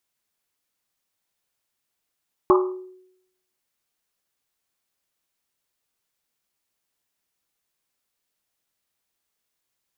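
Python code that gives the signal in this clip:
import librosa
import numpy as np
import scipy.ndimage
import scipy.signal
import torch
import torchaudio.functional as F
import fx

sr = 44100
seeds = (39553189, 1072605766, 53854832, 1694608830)

y = fx.risset_drum(sr, seeds[0], length_s=1.1, hz=370.0, decay_s=0.79, noise_hz=1100.0, noise_width_hz=290.0, noise_pct=25)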